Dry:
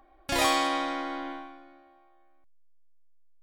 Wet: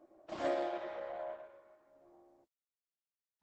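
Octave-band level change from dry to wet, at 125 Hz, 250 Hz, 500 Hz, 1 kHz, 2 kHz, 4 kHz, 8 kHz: n/a, -12.0 dB, -3.5 dB, -14.5 dB, -17.5 dB, -23.5 dB, under -25 dB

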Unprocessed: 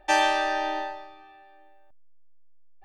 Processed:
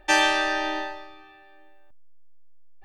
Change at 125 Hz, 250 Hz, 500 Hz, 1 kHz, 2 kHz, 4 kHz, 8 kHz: n/a, +4.5 dB, 0.0 dB, -1.5 dB, +4.5 dB, +5.0 dB, +5.0 dB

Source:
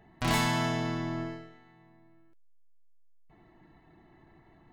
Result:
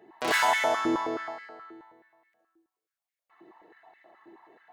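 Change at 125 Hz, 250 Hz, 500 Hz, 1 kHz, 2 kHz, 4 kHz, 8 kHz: -20.0, -1.0, +6.5, +6.5, +6.5, +2.0, +2.0 dB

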